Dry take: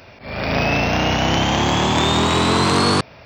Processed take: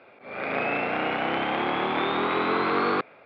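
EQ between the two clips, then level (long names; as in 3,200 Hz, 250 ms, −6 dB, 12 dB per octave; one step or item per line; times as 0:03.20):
dynamic equaliser 1,900 Hz, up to +5 dB, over −35 dBFS, Q 1.5
high-frequency loss of the air 290 metres
loudspeaker in its box 450–3,200 Hz, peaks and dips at 630 Hz −7 dB, 960 Hz −9 dB, 1,800 Hz −10 dB, 2,900 Hz −9 dB
0.0 dB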